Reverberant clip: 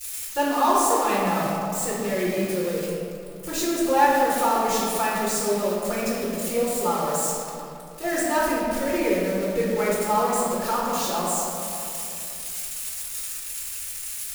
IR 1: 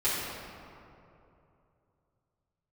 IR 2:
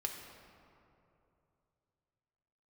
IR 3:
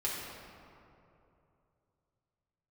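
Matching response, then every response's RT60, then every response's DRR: 1; 2.8 s, 2.9 s, 2.8 s; -13.0 dB, 1.5 dB, -6.5 dB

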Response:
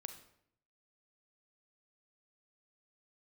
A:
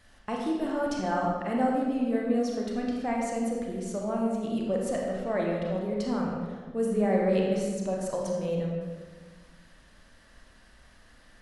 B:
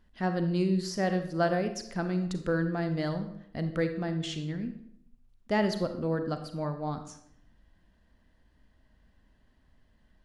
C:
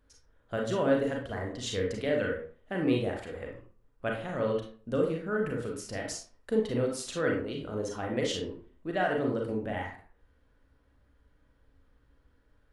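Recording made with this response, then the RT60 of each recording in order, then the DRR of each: B; 1.5 s, 0.70 s, 0.45 s; -1.5 dB, 7.5 dB, -0.5 dB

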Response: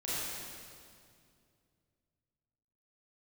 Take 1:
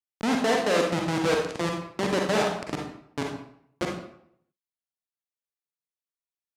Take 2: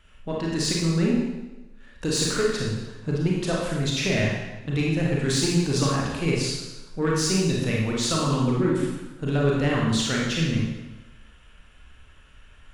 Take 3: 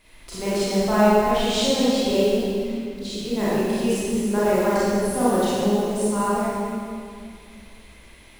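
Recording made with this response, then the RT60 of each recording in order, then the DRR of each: 3; 0.70 s, 1.1 s, 2.3 s; 0.5 dB, -4.0 dB, -10.5 dB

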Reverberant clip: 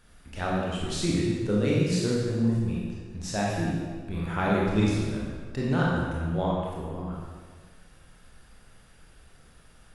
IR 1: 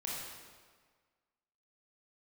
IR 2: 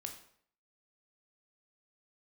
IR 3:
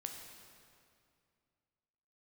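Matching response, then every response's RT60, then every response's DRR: 1; 1.6 s, 0.60 s, 2.4 s; -5.0 dB, 4.0 dB, 2.5 dB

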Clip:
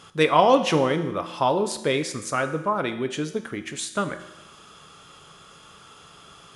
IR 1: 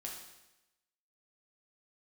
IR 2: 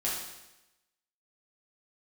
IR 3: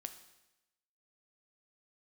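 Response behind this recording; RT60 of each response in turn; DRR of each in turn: 3; 0.95 s, 0.95 s, 0.95 s; -2.0 dB, -6.5 dB, 8.0 dB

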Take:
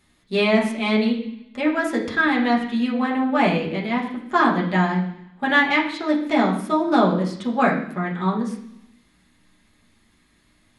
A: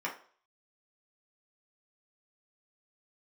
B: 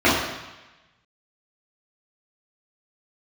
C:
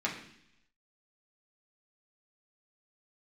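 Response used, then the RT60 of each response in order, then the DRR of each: C; 0.45 s, 1.1 s, 0.70 s; -3.5 dB, -10.5 dB, -3.5 dB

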